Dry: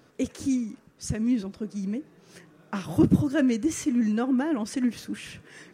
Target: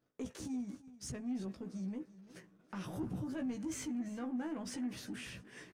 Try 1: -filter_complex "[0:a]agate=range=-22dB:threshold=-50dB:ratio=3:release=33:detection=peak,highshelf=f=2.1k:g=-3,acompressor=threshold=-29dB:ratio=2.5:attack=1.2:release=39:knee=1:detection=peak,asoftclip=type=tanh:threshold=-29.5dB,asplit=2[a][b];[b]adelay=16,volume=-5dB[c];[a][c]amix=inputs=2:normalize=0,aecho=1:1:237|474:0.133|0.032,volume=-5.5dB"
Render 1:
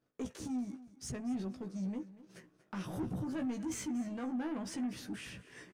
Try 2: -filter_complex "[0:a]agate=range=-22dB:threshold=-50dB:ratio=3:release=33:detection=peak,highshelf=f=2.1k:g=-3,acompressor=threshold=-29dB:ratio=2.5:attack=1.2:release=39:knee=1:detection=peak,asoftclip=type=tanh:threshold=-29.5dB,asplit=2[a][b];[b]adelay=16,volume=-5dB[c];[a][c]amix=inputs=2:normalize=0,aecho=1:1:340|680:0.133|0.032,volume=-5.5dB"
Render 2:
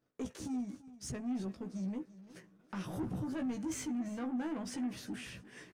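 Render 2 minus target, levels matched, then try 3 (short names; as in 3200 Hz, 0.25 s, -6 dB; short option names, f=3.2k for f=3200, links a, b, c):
compressor: peak gain reduction -4 dB
-filter_complex "[0:a]agate=range=-22dB:threshold=-50dB:ratio=3:release=33:detection=peak,highshelf=f=2.1k:g=-3,acompressor=threshold=-35.5dB:ratio=2.5:attack=1.2:release=39:knee=1:detection=peak,asoftclip=type=tanh:threshold=-29.5dB,asplit=2[a][b];[b]adelay=16,volume=-5dB[c];[a][c]amix=inputs=2:normalize=0,aecho=1:1:340|680:0.133|0.032,volume=-5.5dB"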